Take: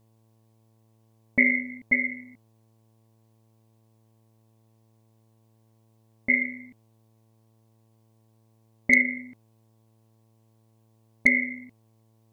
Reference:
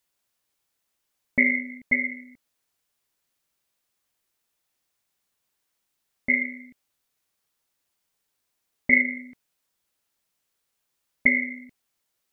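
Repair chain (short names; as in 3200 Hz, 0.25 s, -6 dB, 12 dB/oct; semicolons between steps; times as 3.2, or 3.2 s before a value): clip repair -7 dBFS; de-hum 111.3 Hz, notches 10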